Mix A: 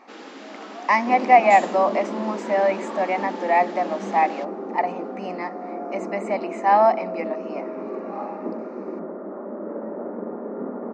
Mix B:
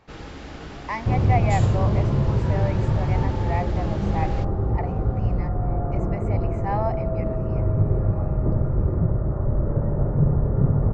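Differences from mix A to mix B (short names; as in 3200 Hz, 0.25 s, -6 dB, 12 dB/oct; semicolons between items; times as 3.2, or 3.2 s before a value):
speech -11.0 dB; master: remove brick-wall FIR high-pass 200 Hz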